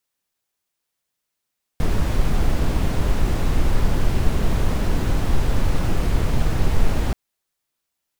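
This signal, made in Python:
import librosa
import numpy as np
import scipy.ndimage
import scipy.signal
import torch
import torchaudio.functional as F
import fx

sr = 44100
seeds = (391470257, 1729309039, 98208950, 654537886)

y = fx.noise_colour(sr, seeds[0], length_s=5.33, colour='brown', level_db=-16.5)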